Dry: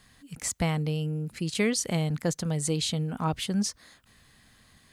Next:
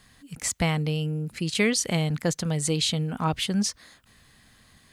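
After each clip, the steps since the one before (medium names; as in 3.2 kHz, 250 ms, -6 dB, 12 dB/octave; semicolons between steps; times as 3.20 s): dynamic bell 2.7 kHz, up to +4 dB, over -46 dBFS, Q 0.7; trim +2 dB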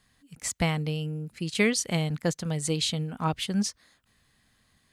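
upward expansion 1.5:1, over -39 dBFS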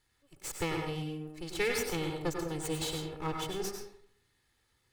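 comb filter that takes the minimum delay 2.3 ms; reverberation RT60 0.60 s, pre-delay 89 ms, DRR 2 dB; trim -7 dB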